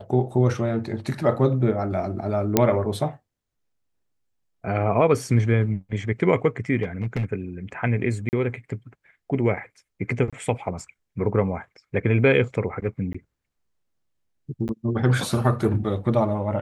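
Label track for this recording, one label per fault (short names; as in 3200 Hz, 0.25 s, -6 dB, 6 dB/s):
2.570000	2.570000	pop -2 dBFS
6.820000	7.250000	clipped -19.5 dBFS
8.290000	8.330000	gap 39 ms
10.300000	10.330000	gap 26 ms
13.130000	13.140000	gap 15 ms
14.680000	14.690000	gap 9.7 ms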